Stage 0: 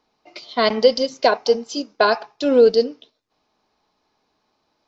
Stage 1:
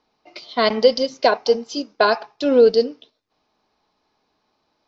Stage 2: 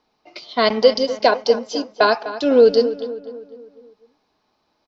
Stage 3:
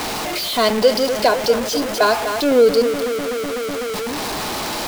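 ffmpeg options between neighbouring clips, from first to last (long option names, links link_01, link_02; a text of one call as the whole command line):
ffmpeg -i in.wav -af "lowpass=frequency=6400:width=0.5412,lowpass=frequency=6400:width=1.3066" out.wav
ffmpeg -i in.wav -filter_complex "[0:a]asplit=2[link_01][link_02];[link_02]adelay=250,lowpass=frequency=2500:poles=1,volume=-13dB,asplit=2[link_03][link_04];[link_04]adelay=250,lowpass=frequency=2500:poles=1,volume=0.5,asplit=2[link_05][link_06];[link_06]adelay=250,lowpass=frequency=2500:poles=1,volume=0.5,asplit=2[link_07][link_08];[link_08]adelay=250,lowpass=frequency=2500:poles=1,volume=0.5,asplit=2[link_09][link_10];[link_10]adelay=250,lowpass=frequency=2500:poles=1,volume=0.5[link_11];[link_01][link_03][link_05][link_07][link_09][link_11]amix=inputs=6:normalize=0,volume=1dB" out.wav
ffmpeg -i in.wav -af "aeval=exprs='val(0)+0.5*0.158*sgn(val(0))':channel_layout=same,volume=-2.5dB" out.wav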